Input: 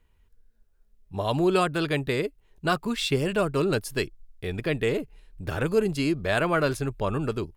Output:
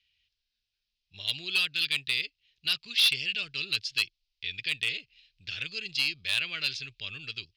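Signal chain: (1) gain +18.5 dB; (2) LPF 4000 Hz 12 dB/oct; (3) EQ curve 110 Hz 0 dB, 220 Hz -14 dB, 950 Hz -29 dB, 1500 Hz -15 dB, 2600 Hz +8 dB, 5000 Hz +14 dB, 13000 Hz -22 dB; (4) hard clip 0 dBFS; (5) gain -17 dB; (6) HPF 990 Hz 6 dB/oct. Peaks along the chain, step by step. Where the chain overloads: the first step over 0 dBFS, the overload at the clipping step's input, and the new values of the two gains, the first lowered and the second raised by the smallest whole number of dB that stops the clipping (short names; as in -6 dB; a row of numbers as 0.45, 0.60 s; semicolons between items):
+7.5, +7.0, +9.5, 0.0, -17.0, -14.5 dBFS; step 1, 9.5 dB; step 1 +8.5 dB, step 5 -7 dB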